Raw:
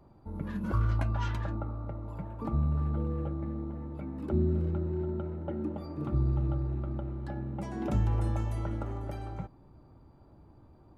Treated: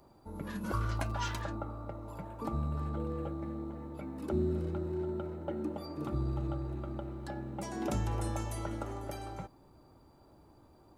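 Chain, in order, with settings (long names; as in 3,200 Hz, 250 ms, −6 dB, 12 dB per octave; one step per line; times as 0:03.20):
bass and treble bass −8 dB, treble +11 dB
0:00.94–0:01.43: surface crackle 85 per second −43 dBFS
level +1 dB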